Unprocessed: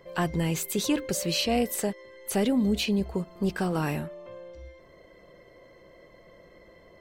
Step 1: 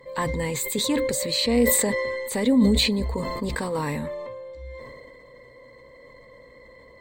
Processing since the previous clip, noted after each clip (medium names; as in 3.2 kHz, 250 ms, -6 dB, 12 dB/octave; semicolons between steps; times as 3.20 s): rippled EQ curve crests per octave 1, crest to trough 13 dB; decay stretcher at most 23 dB/s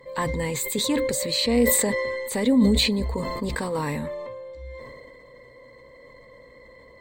no audible change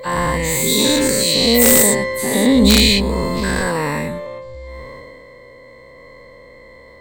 every event in the spectrogram widened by 240 ms; integer overflow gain 3 dB; trim +2 dB